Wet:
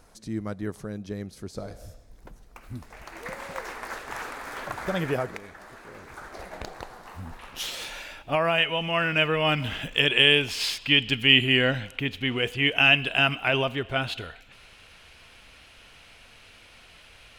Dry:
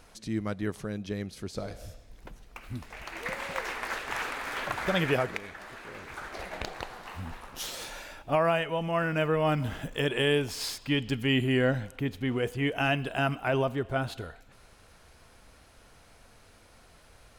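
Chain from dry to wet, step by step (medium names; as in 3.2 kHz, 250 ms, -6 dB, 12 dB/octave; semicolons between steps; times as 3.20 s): peaking EQ 2.8 kHz -6.5 dB 1.2 oct, from 7.39 s +8 dB, from 8.58 s +15 dB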